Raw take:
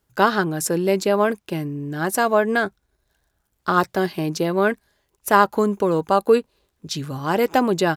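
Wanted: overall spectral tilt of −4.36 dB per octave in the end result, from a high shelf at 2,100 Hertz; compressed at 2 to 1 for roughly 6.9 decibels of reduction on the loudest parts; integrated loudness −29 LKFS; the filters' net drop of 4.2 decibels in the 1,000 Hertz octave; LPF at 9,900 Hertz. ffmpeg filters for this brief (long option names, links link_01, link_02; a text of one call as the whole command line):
ffmpeg -i in.wav -af "lowpass=9900,equalizer=frequency=1000:width_type=o:gain=-6.5,highshelf=frequency=2100:gain=4.5,acompressor=threshold=-23dB:ratio=2,volume=-3dB" out.wav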